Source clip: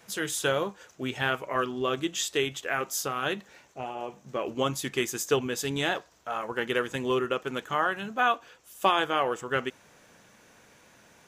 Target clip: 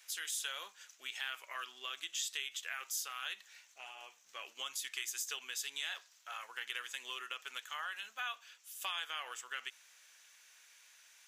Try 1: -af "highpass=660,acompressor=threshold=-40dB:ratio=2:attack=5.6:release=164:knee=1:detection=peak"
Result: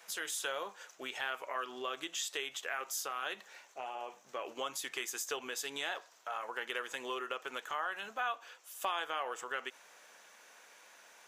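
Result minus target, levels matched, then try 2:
500 Hz band +14.0 dB
-af "highpass=2300,acompressor=threshold=-40dB:ratio=2:attack=5.6:release=164:knee=1:detection=peak"

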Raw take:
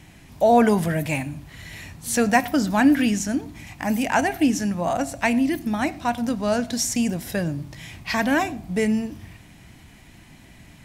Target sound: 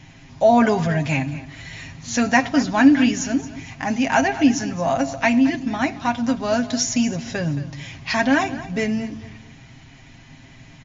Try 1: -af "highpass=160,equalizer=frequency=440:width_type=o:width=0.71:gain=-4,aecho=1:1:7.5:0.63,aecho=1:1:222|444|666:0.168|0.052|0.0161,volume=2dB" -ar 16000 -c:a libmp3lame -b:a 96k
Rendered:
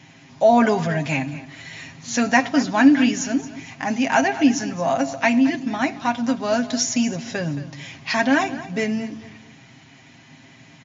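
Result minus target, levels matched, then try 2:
125 Hz band −3.0 dB
-af "equalizer=frequency=440:width_type=o:width=0.71:gain=-4,aecho=1:1:7.5:0.63,aecho=1:1:222|444|666:0.168|0.052|0.0161,volume=2dB" -ar 16000 -c:a libmp3lame -b:a 96k

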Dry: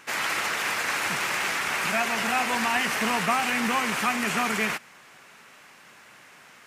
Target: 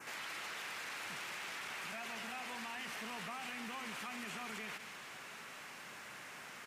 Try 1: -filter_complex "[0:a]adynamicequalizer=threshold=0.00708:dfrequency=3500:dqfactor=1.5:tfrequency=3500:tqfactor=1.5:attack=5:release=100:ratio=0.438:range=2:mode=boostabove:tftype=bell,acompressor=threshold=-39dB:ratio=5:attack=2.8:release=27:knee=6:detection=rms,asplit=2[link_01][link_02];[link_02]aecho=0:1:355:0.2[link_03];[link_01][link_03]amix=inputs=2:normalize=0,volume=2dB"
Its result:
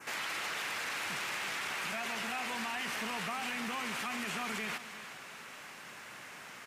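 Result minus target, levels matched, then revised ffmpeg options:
echo 159 ms late; downward compressor: peak gain reduction −7 dB
-filter_complex "[0:a]adynamicequalizer=threshold=0.00708:dfrequency=3500:dqfactor=1.5:tfrequency=3500:tqfactor=1.5:attack=5:release=100:ratio=0.438:range=2:mode=boostabove:tftype=bell,acompressor=threshold=-48dB:ratio=5:attack=2.8:release=27:knee=6:detection=rms,asplit=2[link_01][link_02];[link_02]aecho=0:1:196:0.2[link_03];[link_01][link_03]amix=inputs=2:normalize=0,volume=2dB"

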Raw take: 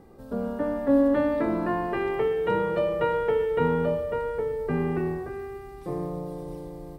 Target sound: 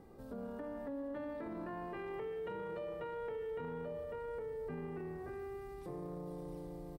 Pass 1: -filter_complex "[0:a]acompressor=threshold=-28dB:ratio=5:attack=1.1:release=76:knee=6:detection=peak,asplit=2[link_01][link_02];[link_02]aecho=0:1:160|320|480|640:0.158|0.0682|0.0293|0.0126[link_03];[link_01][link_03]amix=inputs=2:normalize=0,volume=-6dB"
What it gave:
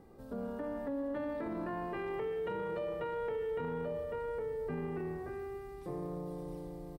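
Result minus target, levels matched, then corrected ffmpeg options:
downward compressor: peak gain reduction −5 dB
-filter_complex "[0:a]acompressor=threshold=-34.5dB:ratio=5:attack=1.1:release=76:knee=6:detection=peak,asplit=2[link_01][link_02];[link_02]aecho=0:1:160|320|480|640:0.158|0.0682|0.0293|0.0126[link_03];[link_01][link_03]amix=inputs=2:normalize=0,volume=-6dB"

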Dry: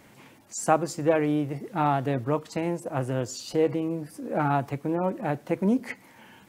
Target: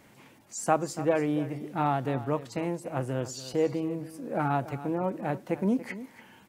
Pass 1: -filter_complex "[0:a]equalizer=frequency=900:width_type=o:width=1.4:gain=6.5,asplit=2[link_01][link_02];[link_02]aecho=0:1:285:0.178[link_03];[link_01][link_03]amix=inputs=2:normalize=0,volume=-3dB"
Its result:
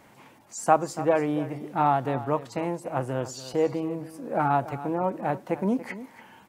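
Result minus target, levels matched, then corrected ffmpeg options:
1,000 Hz band +3.0 dB
-filter_complex "[0:a]asplit=2[link_01][link_02];[link_02]aecho=0:1:285:0.178[link_03];[link_01][link_03]amix=inputs=2:normalize=0,volume=-3dB"

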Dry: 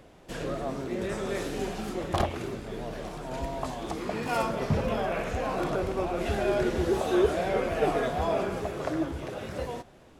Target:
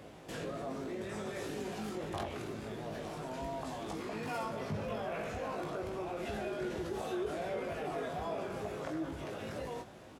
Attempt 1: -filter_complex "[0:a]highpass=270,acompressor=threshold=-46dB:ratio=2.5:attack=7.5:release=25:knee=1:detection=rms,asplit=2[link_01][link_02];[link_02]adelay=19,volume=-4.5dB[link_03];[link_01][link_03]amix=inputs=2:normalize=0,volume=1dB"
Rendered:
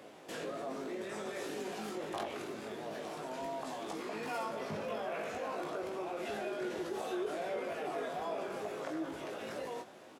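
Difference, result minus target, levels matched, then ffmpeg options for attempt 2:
125 Hz band −9.0 dB
-filter_complex "[0:a]highpass=73,acompressor=threshold=-46dB:ratio=2.5:attack=7.5:release=25:knee=1:detection=rms,asplit=2[link_01][link_02];[link_02]adelay=19,volume=-4.5dB[link_03];[link_01][link_03]amix=inputs=2:normalize=0,volume=1dB"

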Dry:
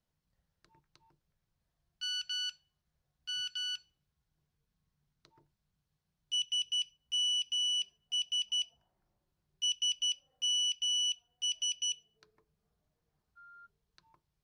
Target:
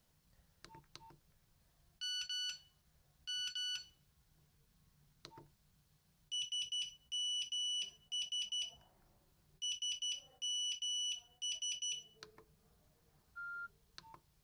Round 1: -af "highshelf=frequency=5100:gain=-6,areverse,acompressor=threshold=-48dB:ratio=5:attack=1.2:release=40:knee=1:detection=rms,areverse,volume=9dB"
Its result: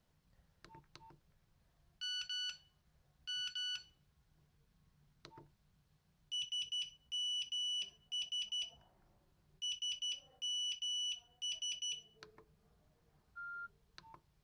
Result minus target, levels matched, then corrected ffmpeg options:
8,000 Hz band −3.5 dB
-af "highshelf=frequency=5100:gain=5.5,areverse,acompressor=threshold=-48dB:ratio=5:attack=1.2:release=40:knee=1:detection=rms,areverse,volume=9dB"

